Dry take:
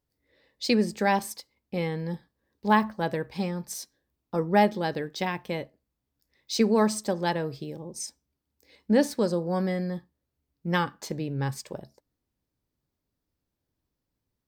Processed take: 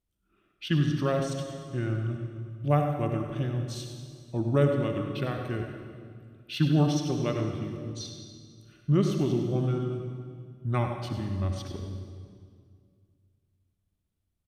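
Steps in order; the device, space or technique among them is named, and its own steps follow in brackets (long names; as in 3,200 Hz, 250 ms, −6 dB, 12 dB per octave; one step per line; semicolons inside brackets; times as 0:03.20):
monster voice (pitch shifter −6.5 semitones; low-shelf EQ 190 Hz +6.5 dB; single-tap delay 99 ms −10.5 dB; convolution reverb RT60 2.1 s, pre-delay 55 ms, DRR 4.5 dB)
level −5 dB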